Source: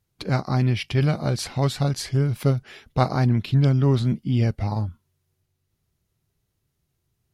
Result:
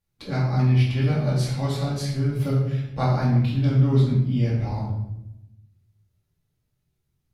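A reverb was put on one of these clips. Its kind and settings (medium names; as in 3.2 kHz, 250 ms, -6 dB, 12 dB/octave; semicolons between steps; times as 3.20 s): simulated room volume 290 m³, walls mixed, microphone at 2.3 m; trim -10 dB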